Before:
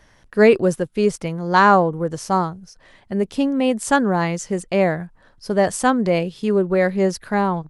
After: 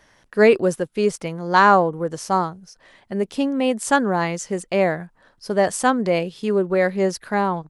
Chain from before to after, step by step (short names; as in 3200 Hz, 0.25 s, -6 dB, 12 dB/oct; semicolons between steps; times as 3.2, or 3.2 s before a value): low shelf 140 Hz -10.5 dB